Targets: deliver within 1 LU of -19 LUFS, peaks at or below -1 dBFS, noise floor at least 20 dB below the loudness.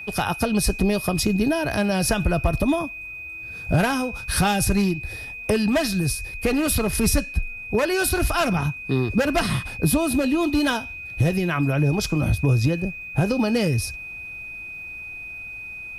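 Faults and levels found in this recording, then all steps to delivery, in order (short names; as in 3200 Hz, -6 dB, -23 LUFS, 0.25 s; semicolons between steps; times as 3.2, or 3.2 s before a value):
steady tone 2500 Hz; tone level -33 dBFS; loudness -22.5 LUFS; peak -9.0 dBFS; loudness target -19.0 LUFS
-> notch 2500 Hz, Q 30; gain +3.5 dB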